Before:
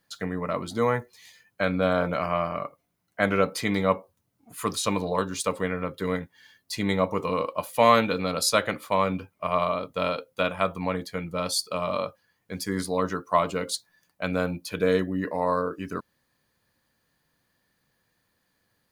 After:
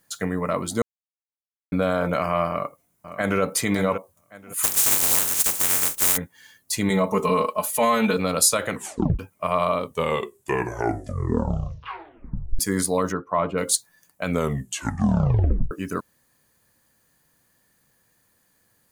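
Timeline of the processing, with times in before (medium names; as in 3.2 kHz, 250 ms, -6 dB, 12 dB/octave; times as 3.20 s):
0.82–1.72 s: mute
2.48–3.41 s: echo throw 560 ms, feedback 20%, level -11.5 dB
4.62–6.16 s: spectral contrast reduction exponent 0.11
6.90–8.17 s: comb 4.7 ms, depth 79%
8.71 s: tape stop 0.48 s
9.72 s: tape stop 2.87 s
13.12–13.58 s: distance through air 450 m
14.26 s: tape stop 1.45 s
whole clip: peak limiter -15.5 dBFS; resonant high shelf 5.8 kHz +7 dB, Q 1.5; trim +4.5 dB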